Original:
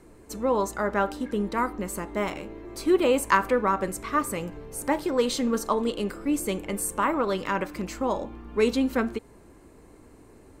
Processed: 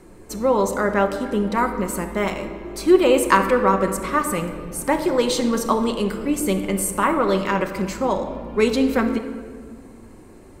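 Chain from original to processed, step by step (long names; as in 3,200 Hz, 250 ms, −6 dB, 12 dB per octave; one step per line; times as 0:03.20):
rectangular room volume 2,400 cubic metres, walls mixed, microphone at 1 metre
level +5 dB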